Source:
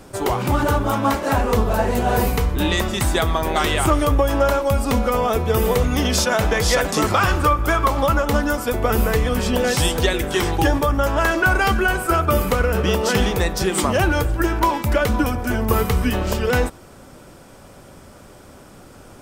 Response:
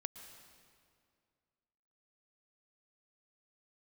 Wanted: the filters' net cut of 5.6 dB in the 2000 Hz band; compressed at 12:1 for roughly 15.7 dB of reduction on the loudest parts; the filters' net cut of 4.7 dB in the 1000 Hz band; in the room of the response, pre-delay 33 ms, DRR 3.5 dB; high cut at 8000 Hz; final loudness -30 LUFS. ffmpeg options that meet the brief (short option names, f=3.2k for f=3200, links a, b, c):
-filter_complex "[0:a]lowpass=8k,equalizer=f=1k:t=o:g=-4.5,equalizer=f=2k:t=o:g=-6,acompressor=threshold=-30dB:ratio=12,asplit=2[a][b];[1:a]atrim=start_sample=2205,adelay=33[c];[b][c]afir=irnorm=-1:irlink=0,volume=-1dB[d];[a][d]amix=inputs=2:normalize=0,volume=3dB"